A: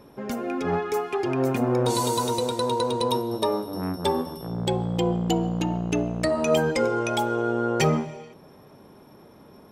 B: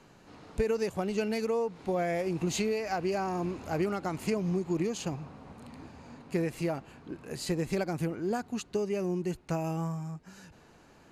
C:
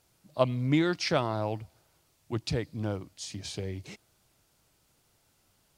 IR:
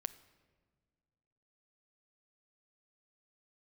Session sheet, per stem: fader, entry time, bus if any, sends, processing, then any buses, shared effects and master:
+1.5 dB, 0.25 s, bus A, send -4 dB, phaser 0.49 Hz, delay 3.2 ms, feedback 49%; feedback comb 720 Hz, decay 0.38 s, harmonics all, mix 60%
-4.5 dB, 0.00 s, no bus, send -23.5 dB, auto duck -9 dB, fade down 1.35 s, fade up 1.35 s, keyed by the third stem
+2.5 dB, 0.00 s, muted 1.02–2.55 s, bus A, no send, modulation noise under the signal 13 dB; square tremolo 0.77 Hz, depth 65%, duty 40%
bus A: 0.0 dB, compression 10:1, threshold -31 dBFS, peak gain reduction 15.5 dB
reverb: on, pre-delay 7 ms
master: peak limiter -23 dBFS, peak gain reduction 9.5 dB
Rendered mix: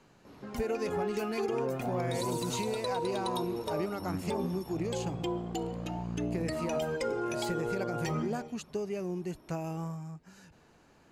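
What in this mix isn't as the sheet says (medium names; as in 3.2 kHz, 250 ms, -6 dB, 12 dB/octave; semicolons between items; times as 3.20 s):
stem A +1.5 dB -> -5.5 dB; stem C: muted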